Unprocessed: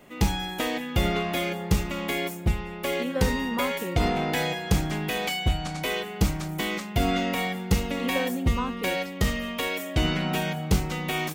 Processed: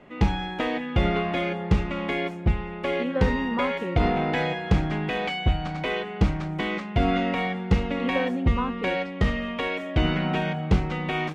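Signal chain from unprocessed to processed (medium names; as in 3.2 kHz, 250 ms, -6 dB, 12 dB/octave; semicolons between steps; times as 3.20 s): low-pass 2.6 kHz 12 dB/octave; trim +2 dB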